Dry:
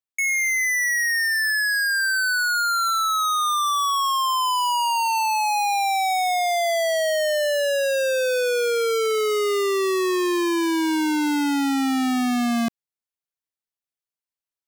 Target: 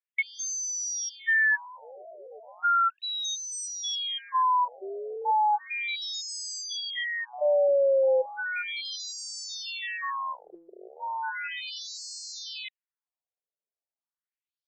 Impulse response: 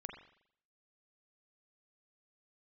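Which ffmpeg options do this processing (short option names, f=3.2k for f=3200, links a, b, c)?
-filter_complex "[0:a]asplit=2[a][b];[b]acrusher=samples=33:mix=1:aa=0.000001,volume=-12dB[c];[a][c]amix=inputs=2:normalize=0,afftfilt=real='re*between(b*sr/1024,500*pow(6000/500,0.5+0.5*sin(2*PI*0.35*pts/sr))/1.41,500*pow(6000/500,0.5+0.5*sin(2*PI*0.35*pts/sr))*1.41)':imag='im*between(b*sr/1024,500*pow(6000/500,0.5+0.5*sin(2*PI*0.35*pts/sr))/1.41,500*pow(6000/500,0.5+0.5*sin(2*PI*0.35*pts/sr))*1.41)':win_size=1024:overlap=0.75"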